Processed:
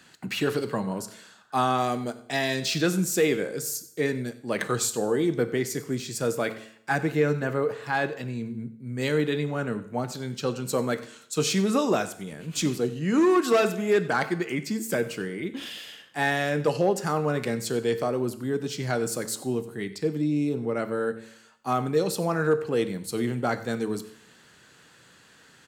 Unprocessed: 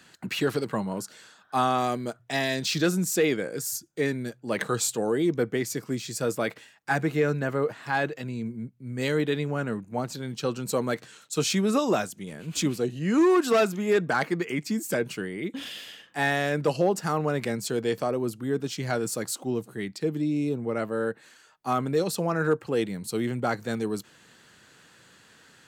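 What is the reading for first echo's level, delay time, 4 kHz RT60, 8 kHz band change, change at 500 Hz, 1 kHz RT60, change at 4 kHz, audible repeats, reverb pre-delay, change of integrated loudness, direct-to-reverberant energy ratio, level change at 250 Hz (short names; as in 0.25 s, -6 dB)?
-18.5 dB, 93 ms, 0.70 s, +0.5 dB, +1.0 dB, 0.70 s, +0.5 dB, 1, 9 ms, +0.5 dB, 10.5 dB, +0.5 dB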